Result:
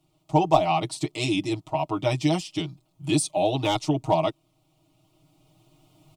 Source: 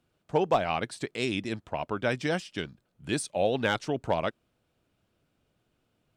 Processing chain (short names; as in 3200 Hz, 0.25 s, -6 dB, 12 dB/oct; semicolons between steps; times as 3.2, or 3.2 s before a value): recorder AGC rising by 6 dB/s; fixed phaser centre 320 Hz, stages 8; comb 6.4 ms, depth 98%; gain +5 dB